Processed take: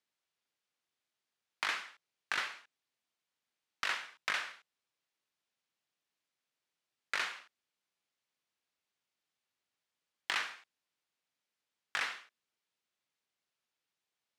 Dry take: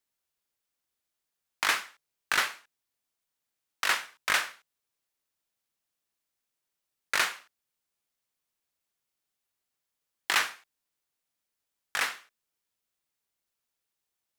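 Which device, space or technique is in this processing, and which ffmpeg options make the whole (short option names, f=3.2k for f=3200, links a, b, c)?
AM radio: -af "highpass=110,lowpass=3.2k,aemphasis=mode=production:type=75kf,acompressor=threshold=-29dB:ratio=5,asoftclip=type=tanh:threshold=-19dB,volume=-1.5dB"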